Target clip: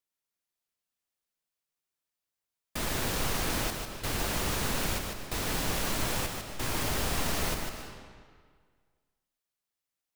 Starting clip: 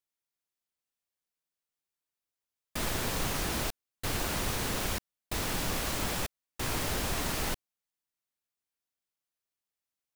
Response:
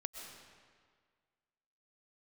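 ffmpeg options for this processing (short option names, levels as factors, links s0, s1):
-filter_complex "[0:a]asplit=2[s0][s1];[1:a]atrim=start_sample=2205,adelay=149[s2];[s1][s2]afir=irnorm=-1:irlink=0,volume=0.794[s3];[s0][s3]amix=inputs=2:normalize=0"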